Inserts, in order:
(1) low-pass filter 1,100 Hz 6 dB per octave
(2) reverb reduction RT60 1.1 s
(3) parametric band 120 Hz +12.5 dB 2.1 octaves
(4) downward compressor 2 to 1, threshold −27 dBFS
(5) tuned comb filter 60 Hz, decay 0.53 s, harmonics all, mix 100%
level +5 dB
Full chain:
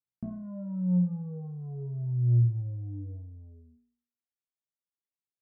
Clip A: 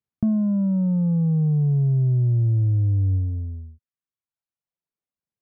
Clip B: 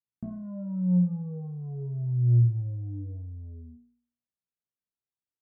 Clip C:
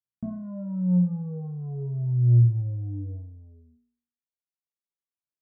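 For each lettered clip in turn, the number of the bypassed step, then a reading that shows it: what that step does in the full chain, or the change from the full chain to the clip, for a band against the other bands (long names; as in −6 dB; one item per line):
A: 5, change in crest factor −5.0 dB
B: 2, change in momentary loudness spread +2 LU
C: 4, average gain reduction 4.0 dB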